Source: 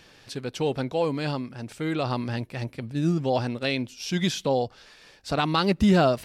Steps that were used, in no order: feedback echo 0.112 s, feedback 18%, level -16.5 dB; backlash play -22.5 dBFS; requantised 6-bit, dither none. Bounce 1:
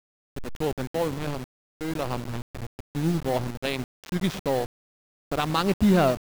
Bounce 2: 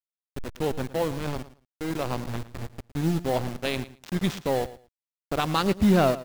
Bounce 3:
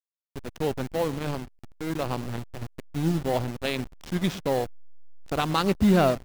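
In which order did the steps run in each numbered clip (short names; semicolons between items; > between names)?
feedback echo > backlash > requantised; backlash > requantised > feedback echo; requantised > feedback echo > backlash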